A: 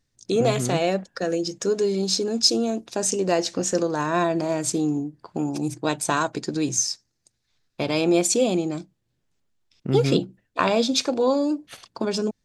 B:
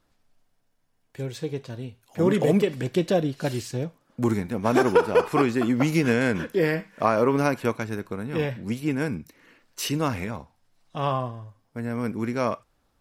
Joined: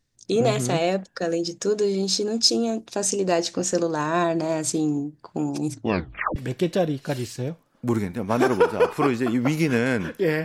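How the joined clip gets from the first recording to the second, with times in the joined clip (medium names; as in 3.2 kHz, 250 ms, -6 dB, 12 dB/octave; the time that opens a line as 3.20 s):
A
5.71 s: tape stop 0.65 s
6.36 s: go over to B from 2.71 s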